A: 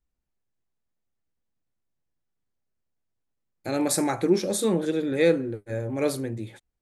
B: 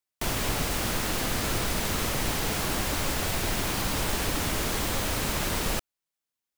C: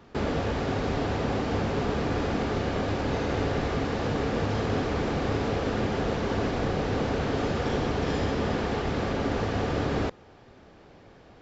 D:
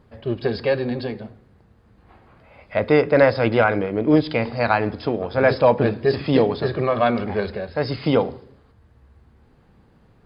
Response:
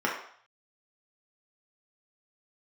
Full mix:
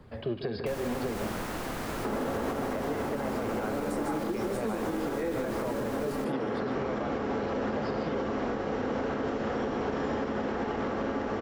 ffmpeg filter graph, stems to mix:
-filter_complex "[0:a]volume=0.562,asplit=4[s0][s1][s2][s3];[s1]volume=0.355[s4];[s2]volume=0.668[s5];[1:a]adelay=450,volume=0.75[s6];[2:a]adelay=1900,volume=1.06,asplit=2[s7][s8];[s8]volume=0.316[s9];[3:a]acompressor=threshold=0.0355:ratio=3,volume=1.33,asplit=2[s10][s11];[s11]volume=0.224[s12];[s3]apad=whole_len=587158[s13];[s7][s13]sidechaincompress=threshold=0.00891:ratio=8:attack=16:release=734[s14];[4:a]atrim=start_sample=2205[s15];[s4][s9]amix=inputs=2:normalize=0[s16];[s16][s15]afir=irnorm=-1:irlink=0[s17];[s5][s12]amix=inputs=2:normalize=0,aecho=0:1:148:1[s18];[s0][s6][s14][s10][s17][s18]amix=inputs=6:normalize=0,acrossover=split=160|320|1800[s19][s20][s21][s22];[s19]acompressor=threshold=0.00891:ratio=4[s23];[s20]acompressor=threshold=0.0251:ratio=4[s24];[s21]acompressor=threshold=0.0398:ratio=4[s25];[s22]acompressor=threshold=0.00501:ratio=4[s26];[s23][s24][s25][s26]amix=inputs=4:normalize=0,alimiter=limit=0.075:level=0:latency=1:release=131"

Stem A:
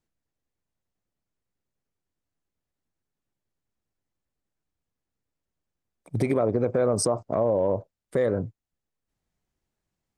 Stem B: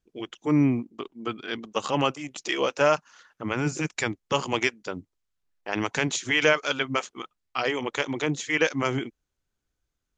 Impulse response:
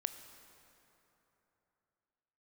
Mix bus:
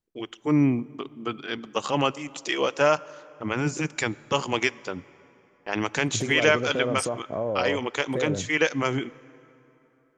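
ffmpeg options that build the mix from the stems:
-filter_complex "[0:a]volume=0.562[s0];[1:a]agate=range=0.0224:threshold=0.00501:ratio=3:detection=peak,volume=0.794,asplit=2[s1][s2];[s2]volume=0.376[s3];[2:a]atrim=start_sample=2205[s4];[s3][s4]afir=irnorm=-1:irlink=0[s5];[s0][s1][s5]amix=inputs=3:normalize=0"

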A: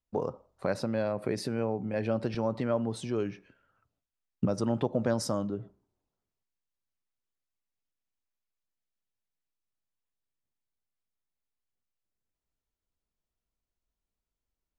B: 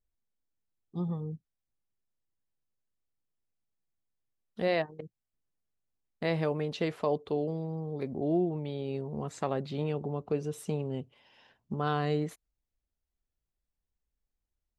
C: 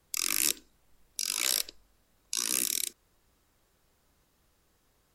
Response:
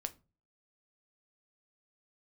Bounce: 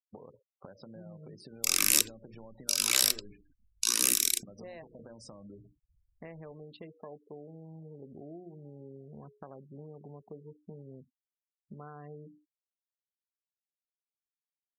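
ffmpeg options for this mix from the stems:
-filter_complex "[0:a]acompressor=threshold=0.0316:ratio=8,volume=0.398[s0];[1:a]afwtdn=0.00794,volume=0.398,asplit=2[s1][s2];[s2]volume=0.0891[s3];[2:a]adelay=1500,volume=1.26,asplit=2[s4][s5];[s5]volume=0.188[s6];[s0][s1]amix=inputs=2:normalize=0,bandreject=f=60:t=h:w=6,bandreject=f=120:t=h:w=6,bandreject=f=180:t=h:w=6,bandreject=f=240:t=h:w=6,bandreject=f=300:t=h:w=6,bandreject=f=360:t=h:w=6,bandreject=f=420:t=h:w=6,bandreject=f=480:t=h:w=6,acompressor=threshold=0.00562:ratio=10,volume=1[s7];[3:a]atrim=start_sample=2205[s8];[s3][s6]amix=inputs=2:normalize=0[s9];[s9][s8]afir=irnorm=-1:irlink=0[s10];[s4][s7][s10]amix=inputs=3:normalize=0,afftfilt=real='re*gte(hypot(re,im),0.00282)':imag='im*gte(hypot(re,im),0.00282)':win_size=1024:overlap=0.75"

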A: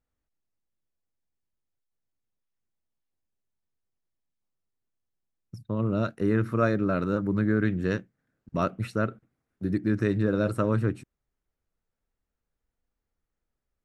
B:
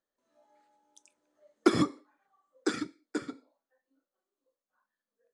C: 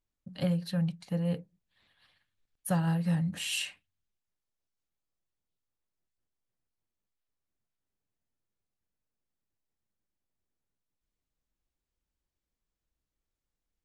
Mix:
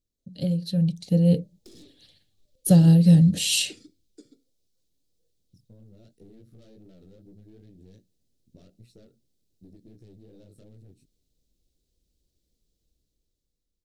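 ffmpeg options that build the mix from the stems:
-filter_complex "[0:a]flanger=delay=16.5:depth=5.6:speed=2.6,volume=0.355[s0];[1:a]volume=0.631,asplit=2[s1][s2];[s2]volume=0.251[s3];[2:a]highshelf=f=5300:g=-8.5,dynaudnorm=f=230:g=9:m=3.76,volume=1.33[s4];[s0][s1]amix=inputs=2:normalize=0,aeval=exprs='(tanh(100*val(0)+0.65)-tanh(0.65))/100':c=same,acompressor=threshold=0.00447:ratio=6,volume=1[s5];[s3]aecho=0:1:1033:1[s6];[s4][s5][s6]amix=inputs=3:normalize=0,firequalizer=gain_entry='entry(470,0);entry(1000,-24);entry(3900,4)':delay=0.05:min_phase=1"

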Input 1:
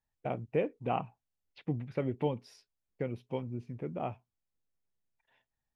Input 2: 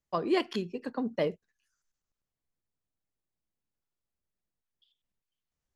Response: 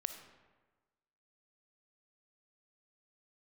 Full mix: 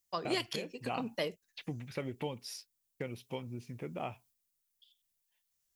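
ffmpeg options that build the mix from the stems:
-filter_complex "[0:a]agate=range=0.0224:threshold=0.00126:ratio=3:detection=peak,acompressor=threshold=0.0158:ratio=2,volume=0.75[s0];[1:a]volume=0.422[s1];[s0][s1]amix=inputs=2:normalize=0,crystalizer=i=8:c=0,alimiter=limit=0.0841:level=0:latency=1:release=478"

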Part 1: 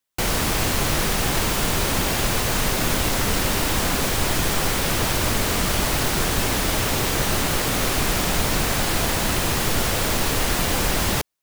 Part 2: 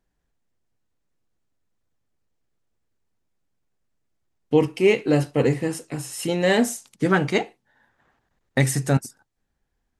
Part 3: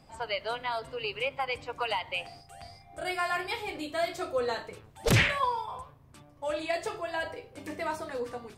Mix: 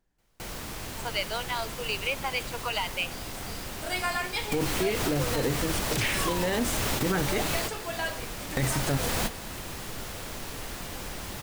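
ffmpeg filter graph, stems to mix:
-filter_complex "[0:a]volume=0.631,asplit=2[s0][s1];[s1]volume=0.251[s2];[1:a]volume=1,asplit=2[s3][s4];[2:a]highshelf=f=2100:g=9.5,adelay=850,volume=0.794[s5];[s4]apad=whole_len=503895[s6];[s0][s6]sidechaingate=range=0.00501:threshold=0.002:ratio=16:detection=peak[s7];[s7][s3]amix=inputs=2:normalize=0,alimiter=limit=0.266:level=0:latency=1:release=38,volume=1[s8];[s2]aecho=0:1:215:1[s9];[s5][s8][s9]amix=inputs=3:normalize=0,alimiter=limit=0.141:level=0:latency=1:release=313"

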